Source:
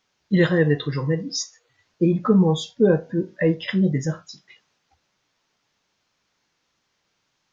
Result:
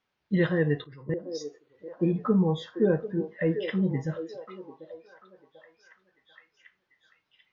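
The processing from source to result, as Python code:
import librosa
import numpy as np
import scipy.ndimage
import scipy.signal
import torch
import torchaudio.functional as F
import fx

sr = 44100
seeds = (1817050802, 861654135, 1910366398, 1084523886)

y = fx.level_steps(x, sr, step_db=20, at=(0.82, 1.33), fade=0.02)
y = scipy.signal.sosfilt(scipy.signal.butter(2, 3200.0, 'lowpass', fs=sr, output='sos'), y)
y = fx.echo_stepped(y, sr, ms=742, hz=450.0, octaves=0.7, feedback_pct=70, wet_db=-8.0)
y = y * 10.0 ** (-6.5 / 20.0)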